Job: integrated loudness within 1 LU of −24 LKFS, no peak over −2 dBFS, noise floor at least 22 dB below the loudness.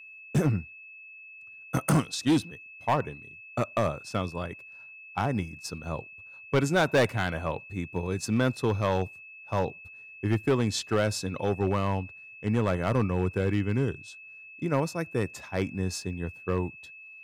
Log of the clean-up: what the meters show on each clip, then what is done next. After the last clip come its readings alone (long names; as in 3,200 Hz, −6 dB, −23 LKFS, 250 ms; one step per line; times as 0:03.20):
share of clipped samples 1.0%; peaks flattened at −17.5 dBFS; interfering tone 2,600 Hz; level of the tone −45 dBFS; integrated loudness −29.0 LKFS; sample peak −17.5 dBFS; target loudness −24.0 LKFS
→ clipped peaks rebuilt −17.5 dBFS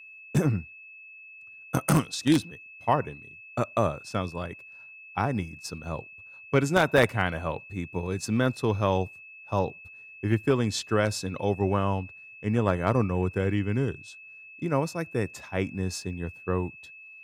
share of clipped samples 0.0%; interfering tone 2,600 Hz; level of the tone −45 dBFS
→ notch filter 2,600 Hz, Q 30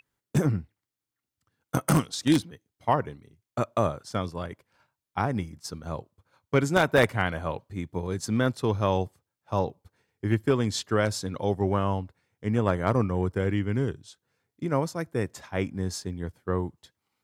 interfering tone none found; integrated loudness −28.0 LKFS; sample peak −8.0 dBFS; target loudness −24.0 LKFS
→ level +4 dB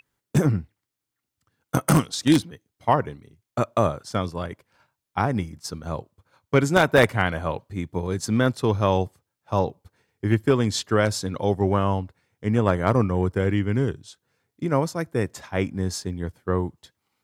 integrated loudness −24.0 LKFS; sample peak −4.0 dBFS; background noise floor −84 dBFS